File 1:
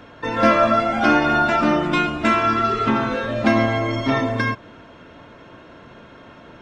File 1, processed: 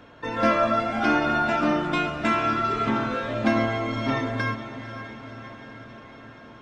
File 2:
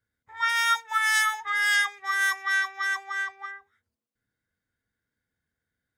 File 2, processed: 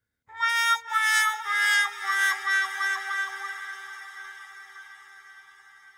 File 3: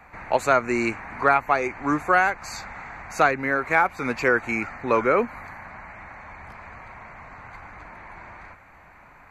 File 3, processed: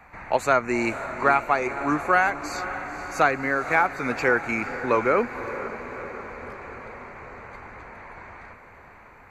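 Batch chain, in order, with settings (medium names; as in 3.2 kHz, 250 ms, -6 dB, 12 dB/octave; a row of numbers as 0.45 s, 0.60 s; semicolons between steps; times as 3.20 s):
echo that smears into a reverb 516 ms, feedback 64%, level -12 dB; normalise loudness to -24 LUFS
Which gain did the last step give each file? -5.5 dB, +0.5 dB, -1.0 dB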